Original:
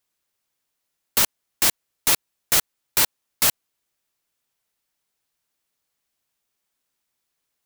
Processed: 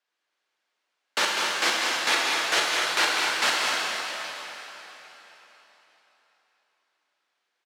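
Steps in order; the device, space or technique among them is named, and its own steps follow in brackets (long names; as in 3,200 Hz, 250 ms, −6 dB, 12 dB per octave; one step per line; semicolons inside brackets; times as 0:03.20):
station announcement (band-pass filter 420–3,900 Hz; parametric band 1,600 Hz +4.5 dB 0.27 octaves; loudspeakers that aren't time-aligned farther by 68 metres −7 dB, 85 metres −10 dB; convolution reverb RT60 3.9 s, pre-delay 7 ms, DRR −3.5 dB)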